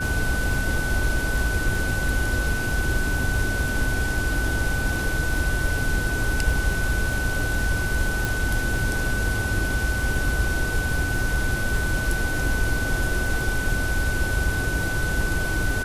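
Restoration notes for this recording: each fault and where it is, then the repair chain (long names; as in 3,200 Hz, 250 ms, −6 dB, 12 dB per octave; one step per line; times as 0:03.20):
surface crackle 22 per second −31 dBFS
whistle 1,500 Hz −27 dBFS
0:08.25: click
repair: click removal
notch filter 1,500 Hz, Q 30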